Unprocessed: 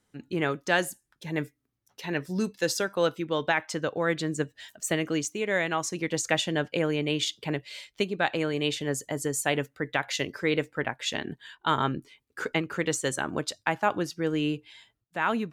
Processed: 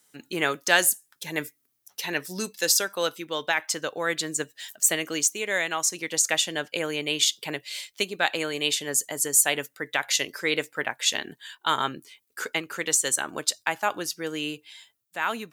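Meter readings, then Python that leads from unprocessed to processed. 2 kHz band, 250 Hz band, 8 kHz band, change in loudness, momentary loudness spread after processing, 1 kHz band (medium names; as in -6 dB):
+3.0 dB, -5.0 dB, +11.5 dB, +3.5 dB, 12 LU, 0.0 dB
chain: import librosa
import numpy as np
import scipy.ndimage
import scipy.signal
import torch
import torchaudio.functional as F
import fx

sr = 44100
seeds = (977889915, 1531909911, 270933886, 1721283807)

y = fx.rider(x, sr, range_db=10, speed_s=2.0)
y = fx.riaa(y, sr, side='recording')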